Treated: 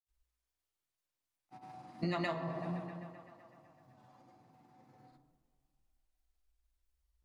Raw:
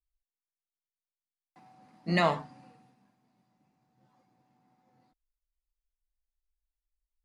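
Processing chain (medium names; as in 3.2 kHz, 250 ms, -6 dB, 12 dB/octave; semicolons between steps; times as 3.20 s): granulator, pitch spread up and down by 0 st; tape echo 128 ms, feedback 79%, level -22 dB, low-pass 5.1 kHz; on a send at -6.5 dB: reverberation RT60 1.2 s, pre-delay 3 ms; on the sum: compression 6:1, threshold -40 dBFS, peak gain reduction 18 dB; trim +6 dB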